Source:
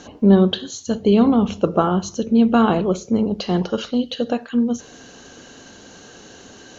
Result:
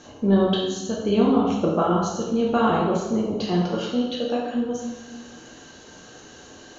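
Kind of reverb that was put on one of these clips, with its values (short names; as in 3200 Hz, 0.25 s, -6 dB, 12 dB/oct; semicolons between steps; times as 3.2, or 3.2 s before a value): plate-style reverb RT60 1.1 s, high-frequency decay 0.75×, DRR -4 dB; gain -7 dB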